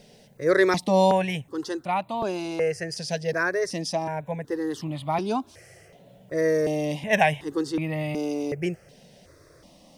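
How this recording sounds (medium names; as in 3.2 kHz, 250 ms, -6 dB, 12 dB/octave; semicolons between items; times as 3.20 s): notches that jump at a steady rate 2.7 Hz 320–1600 Hz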